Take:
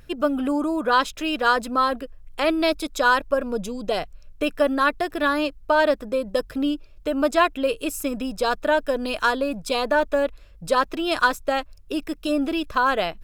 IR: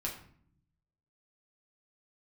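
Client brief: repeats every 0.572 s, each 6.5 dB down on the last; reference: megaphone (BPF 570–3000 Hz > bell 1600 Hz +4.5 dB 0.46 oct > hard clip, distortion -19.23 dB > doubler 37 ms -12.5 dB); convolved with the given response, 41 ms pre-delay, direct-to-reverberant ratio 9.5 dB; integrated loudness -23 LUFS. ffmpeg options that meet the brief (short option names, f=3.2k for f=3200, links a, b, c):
-filter_complex "[0:a]aecho=1:1:572|1144|1716|2288|2860|3432:0.473|0.222|0.105|0.0491|0.0231|0.0109,asplit=2[a][b];[1:a]atrim=start_sample=2205,adelay=41[c];[b][c]afir=irnorm=-1:irlink=0,volume=-11dB[d];[a][d]amix=inputs=2:normalize=0,highpass=570,lowpass=3k,equalizer=f=1.6k:t=o:w=0.46:g=4.5,asoftclip=type=hard:threshold=-11dB,asplit=2[e][f];[f]adelay=37,volume=-12.5dB[g];[e][g]amix=inputs=2:normalize=0,volume=-0.5dB"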